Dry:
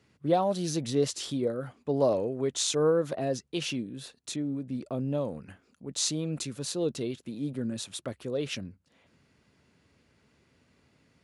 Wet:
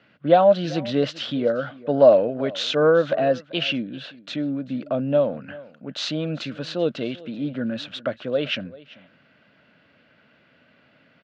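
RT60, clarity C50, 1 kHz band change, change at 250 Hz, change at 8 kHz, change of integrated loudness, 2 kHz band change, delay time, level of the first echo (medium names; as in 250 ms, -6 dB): no reverb, no reverb, +9.5 dB, +6.0 dB, -12.0 dB, +8.0 dB, +13.0 dB, 389 ms, -20.5 dB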